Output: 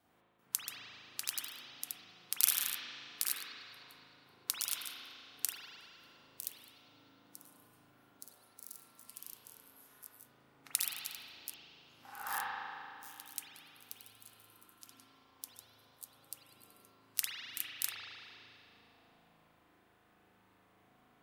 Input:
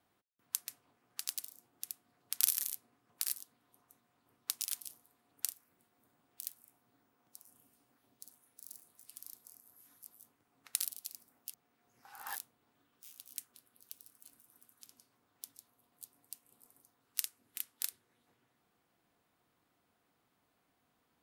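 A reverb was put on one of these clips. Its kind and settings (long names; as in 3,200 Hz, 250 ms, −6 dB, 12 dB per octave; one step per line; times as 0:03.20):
spring reverb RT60 2.5 s, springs 37 ms, chirp 65 ms, DRR −8 dB
level +1 dB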